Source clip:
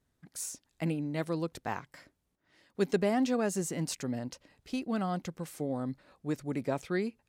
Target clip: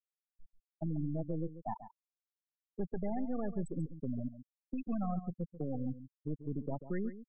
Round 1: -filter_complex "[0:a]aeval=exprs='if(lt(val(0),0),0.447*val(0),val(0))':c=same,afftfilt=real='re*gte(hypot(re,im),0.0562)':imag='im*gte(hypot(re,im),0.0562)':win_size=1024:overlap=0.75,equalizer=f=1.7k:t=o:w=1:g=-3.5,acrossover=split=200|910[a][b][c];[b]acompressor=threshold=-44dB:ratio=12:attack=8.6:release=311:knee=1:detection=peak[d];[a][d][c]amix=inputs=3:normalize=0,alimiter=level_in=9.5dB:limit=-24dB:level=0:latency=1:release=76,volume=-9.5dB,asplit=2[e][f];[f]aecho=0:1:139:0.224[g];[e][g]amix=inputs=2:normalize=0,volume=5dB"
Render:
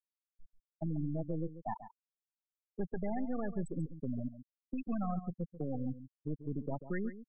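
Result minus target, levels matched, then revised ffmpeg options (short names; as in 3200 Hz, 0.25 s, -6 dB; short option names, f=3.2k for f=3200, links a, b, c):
2000 Hz band +6.0 dB
-filter_complex "[0:a]aeval=exprs='if(lt(val(0),0),0.447*val(0),val(0))':c=same,afftfilt=real='re*gte(hypot(re,im),0.0562)':imag='im*gte(hypot(re,im),0.0562)':win_size=1024:overlap=0.75,equalizer=f=1.7k:t=o:w=1:g=-11,acrossover=split=200|910[a][b][c];[b]acompressor=threshold=-44dB:ratio=12:attack=8.6:release=311:knee=1:detection=peak[d];[a][d][c]amix=inputs=3:normalize=0,alimiter=level_in=9.5dB:limit=-24dB:level=0:latency=1:release=76,volume=-9.5dB,asplit=2[e][f];[f]aecho=0:1:139:0.224[g];[e][g]amix=inputs=2:normalize=0,volume=5dB"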